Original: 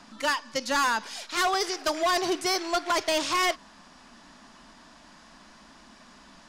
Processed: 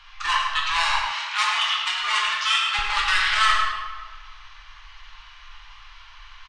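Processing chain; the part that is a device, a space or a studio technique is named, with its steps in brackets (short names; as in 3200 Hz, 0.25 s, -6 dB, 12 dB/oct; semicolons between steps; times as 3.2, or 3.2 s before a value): elliptic band-stop 100–1900 Hz, stop band 40 dB; monster voice (pitch shift -9 st; low shelf 240 Hz +8 dB; echo 0.105 s -9 dB; reverb RT60 1.6 s, pre-delay 7 ms, DRR -3 dB); 1.11–2.79 HPF 570 Hz 6 dB/oct; gain +6.5 dB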